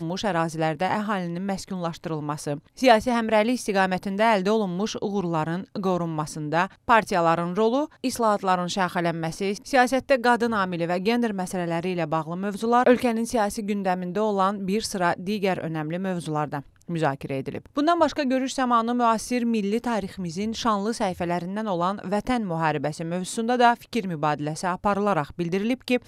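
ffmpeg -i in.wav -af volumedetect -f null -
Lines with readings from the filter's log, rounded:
mean_volume: -24.2 dB
max_volume: -4.1 dB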